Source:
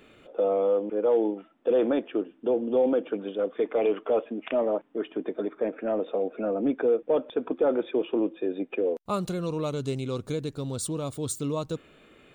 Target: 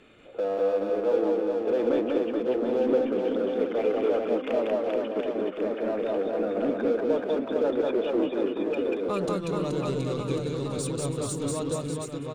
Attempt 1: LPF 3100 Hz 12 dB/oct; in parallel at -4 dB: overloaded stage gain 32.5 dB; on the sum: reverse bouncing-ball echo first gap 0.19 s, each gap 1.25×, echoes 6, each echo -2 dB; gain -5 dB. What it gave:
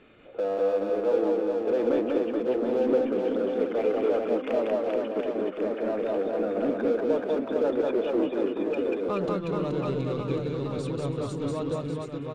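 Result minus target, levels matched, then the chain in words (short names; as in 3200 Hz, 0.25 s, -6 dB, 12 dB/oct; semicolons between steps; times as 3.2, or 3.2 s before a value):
8000 Hz band -14.5 dB
LPF 9800 Hz 12 dB/oct; in parallel at -4 dB: overloaded stage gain 32.5 dB; on the sum: reverse bouncing-ball echo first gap 0.19 s, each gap 1.25×, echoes 6, each echo -2 dB; gain -5 dB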